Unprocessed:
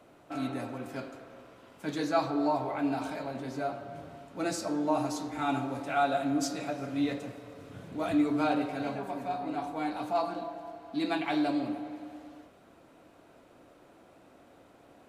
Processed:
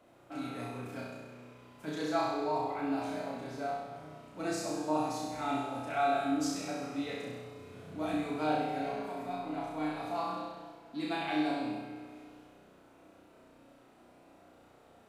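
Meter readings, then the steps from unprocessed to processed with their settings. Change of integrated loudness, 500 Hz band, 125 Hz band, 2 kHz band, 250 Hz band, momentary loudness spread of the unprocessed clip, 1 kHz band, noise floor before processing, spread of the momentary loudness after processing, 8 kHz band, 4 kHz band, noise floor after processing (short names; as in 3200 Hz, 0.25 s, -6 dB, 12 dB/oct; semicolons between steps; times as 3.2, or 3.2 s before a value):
-3.5 dB, -2.5 dB, -3.5 dB, -2.0 dB, -4.5 dB, 16 LU, -2.0 dB, -58 dBFS, 15 LU, -2.0 dB, -1.5 dB, -60 dBFS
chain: flutter echo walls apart 5.6 m, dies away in 1.1 s; gain -6.5 dB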